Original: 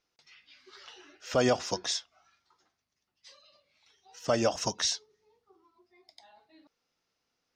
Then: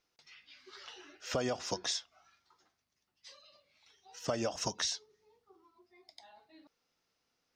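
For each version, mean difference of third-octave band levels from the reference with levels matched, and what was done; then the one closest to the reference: 4.0 dB: compression 5:1, threshold -31 dBFS, peak gain reduction 10 dB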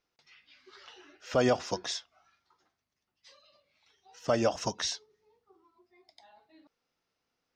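1.0 dB: treble shelf 4.6 kHz -7.5 dB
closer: second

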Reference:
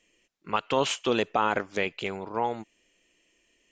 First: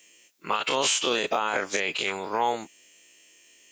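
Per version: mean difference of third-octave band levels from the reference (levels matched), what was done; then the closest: 7.5 dB: every event in the spectrogram widened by 60 ms; RIAA curve recording; peak limiter -17 dBFS, peak gain reduction 11.5 dB; bass shelf 480 Hz +3 dB; trim +2.5 dB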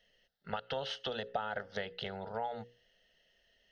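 5.5 dB: peaking EQ 7.4 kHz -12.5 dB 0.29 oct; hum notches 60/120/180/240/300/360/420/480/540 Hz; compression 6:1, threshold -32 dBFS, peak gain reduction 12.5 dB; static phaser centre 1.6 kHz, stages 8; trim +2 dB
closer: second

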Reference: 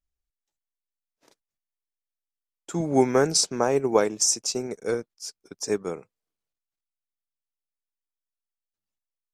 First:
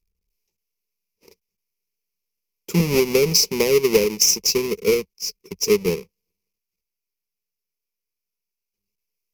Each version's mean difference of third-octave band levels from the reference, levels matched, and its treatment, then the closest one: 9.0 dB: square wave that keeps the level; high-order bell 1.1 kHz -11 dB; compression 6:1, threshold -19 dBFS, peak gain reduction 8.5 dB; rippled EQ curve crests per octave 0.82, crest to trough 12 dB; trim +3 dB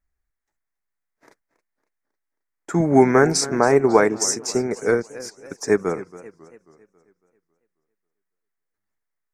5.0 dB: resonant high shelf 2.4 kHz -7 dB, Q 3; band-stop 530 Hz, Q 12; in parallel at -1.5 dB: peak limiter -14.5 dBFS, peak gain reduction 8 dB; on the sum: modulated delay 273 ms, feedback 47%, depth 164 cents, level -17 dB; trim +2.5 dB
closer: second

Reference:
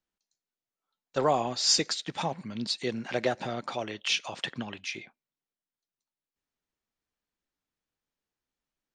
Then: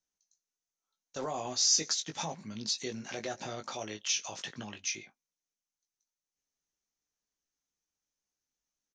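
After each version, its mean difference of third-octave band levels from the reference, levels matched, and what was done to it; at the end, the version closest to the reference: 3.0 dB: peak limiter -21.5 dBFS, peak gain reduction 9.5 dB; resonant low-pass 6.2 kHz, resonance Q 7.8; doubling 19 ms -6 dB; trim -6.5 dB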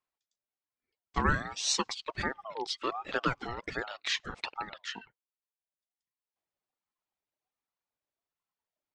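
8.0 dB: reverb removal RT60 1.1 s; treble shelf 6.3 kHz -10.5 dB; ring modulator with a swept carrier 820 Hz, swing 30%, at 1.3 Hz; trim +1.5 dB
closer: first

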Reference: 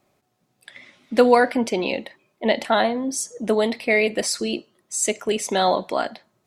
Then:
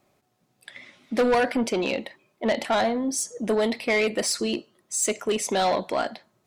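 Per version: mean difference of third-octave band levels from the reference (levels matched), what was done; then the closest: 3.5 dB: saturation -16.5 dBFS, distortion -10 dB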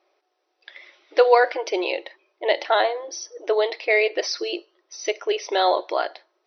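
6.5 dB: brick-wall FIR band-pass 310–6100 Hz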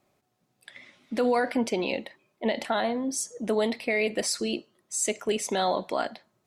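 2.0 dB: peak limiter -12 dBFS, peak gain reduction 9 dB; trim -4 dB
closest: third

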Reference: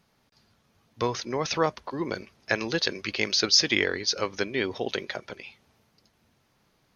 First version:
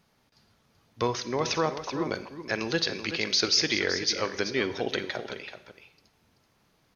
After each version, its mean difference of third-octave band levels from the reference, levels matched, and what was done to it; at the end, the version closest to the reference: 4.0 dB: peak limiter -13.5 dBFS, peak gain reduction 7 dB; delay 382 ms -10.5 dB; Schroeder reverb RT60 0.77 s, DRR 13 dB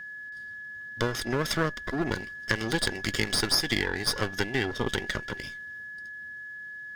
8.5 dB: comb filter that takes the minimum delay 0.58 ms; compression 3:1, threshold -28 dBFS, peak gain reduction 9.5 dB; whistle 1.7 kHz -42 dBFS; trim +4 dB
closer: first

